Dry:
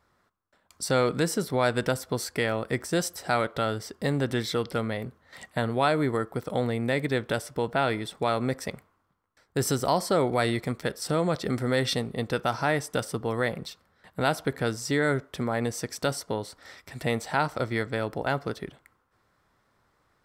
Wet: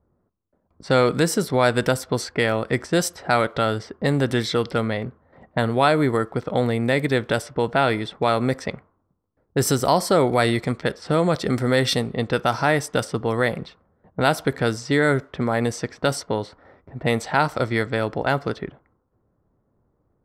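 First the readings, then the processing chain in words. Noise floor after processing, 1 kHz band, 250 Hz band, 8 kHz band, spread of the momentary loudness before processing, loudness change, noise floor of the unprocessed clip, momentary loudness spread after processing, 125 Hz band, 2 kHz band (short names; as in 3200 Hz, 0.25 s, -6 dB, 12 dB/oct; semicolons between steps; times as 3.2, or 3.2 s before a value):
-70 dBFS, +6.0 dB, +6.0 dB, +4.0 dB, 9 LU, +6.0 dB, -70 dBFS, 8 LU, +6.0 dB, +6.0 dB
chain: low-pass opened by the level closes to 440 Hz, open at -23.5 dBFS; gain +6 dB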